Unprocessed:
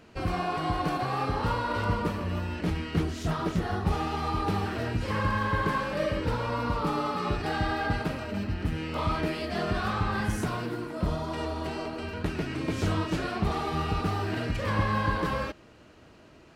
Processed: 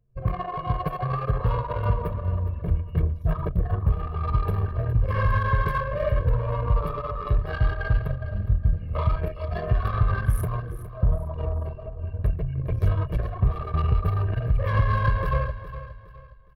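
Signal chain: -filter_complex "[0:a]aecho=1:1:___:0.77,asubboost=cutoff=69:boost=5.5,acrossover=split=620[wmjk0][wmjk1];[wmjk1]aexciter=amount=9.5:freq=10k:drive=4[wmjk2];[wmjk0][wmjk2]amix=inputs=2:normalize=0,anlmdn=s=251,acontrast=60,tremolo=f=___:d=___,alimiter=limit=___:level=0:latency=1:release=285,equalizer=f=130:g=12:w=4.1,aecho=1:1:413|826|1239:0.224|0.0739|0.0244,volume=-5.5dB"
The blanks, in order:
1.8, 6.9, 0.28, -8.5dB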